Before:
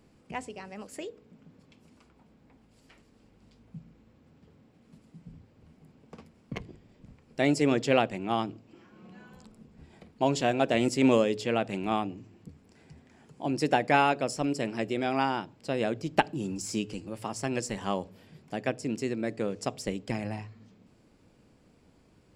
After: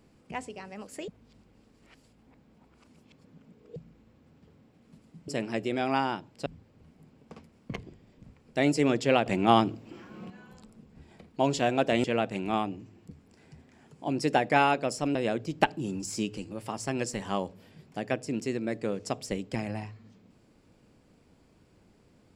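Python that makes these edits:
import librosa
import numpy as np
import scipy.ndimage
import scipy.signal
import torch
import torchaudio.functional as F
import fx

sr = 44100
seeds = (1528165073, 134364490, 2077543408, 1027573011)

y = fx.edit(x, sr, fx.reverse_span(start_s=1.08, length_s=2.68),
    fx.clip_gain(start_s=8.08, length_s=1.04, db=8.0),
    fx.cut(start_s=10.86, length_s=0.56),
    fx.move(start_s=14.53, length_s=1.18, to_s=5.28), tone=tone)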